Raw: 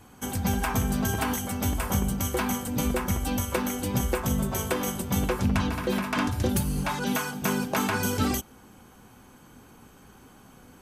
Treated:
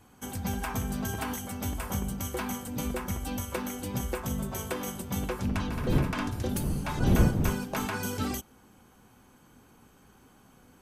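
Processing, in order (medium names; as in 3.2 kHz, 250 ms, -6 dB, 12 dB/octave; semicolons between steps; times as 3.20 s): 5.43–7.85 s: wind noise 190 Hz -21 dBFS; trim -6 dB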